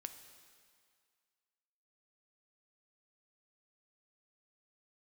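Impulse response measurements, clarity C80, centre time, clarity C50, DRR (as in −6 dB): 10.5 dB, 22 ms, 9.5 dB, 8.0 dB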